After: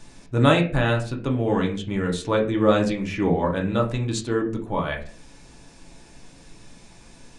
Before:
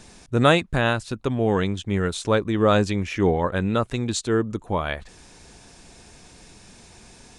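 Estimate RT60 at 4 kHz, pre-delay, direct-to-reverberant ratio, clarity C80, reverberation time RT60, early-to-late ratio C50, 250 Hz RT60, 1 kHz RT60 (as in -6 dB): 0.25 s, 3 ms, 0.5 dB, 15.5 dB, 0.40 s, 11.0 dB, 0.65 s, 0.35 s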